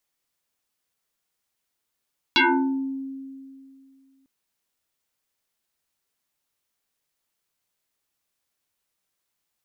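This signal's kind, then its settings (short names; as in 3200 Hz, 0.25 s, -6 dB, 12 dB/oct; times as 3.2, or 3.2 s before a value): FM tone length 1.90 s, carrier 269 Hz, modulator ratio 2.29, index 7, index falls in 0.68 s exponential, decay 2.44 s, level -13.5 dB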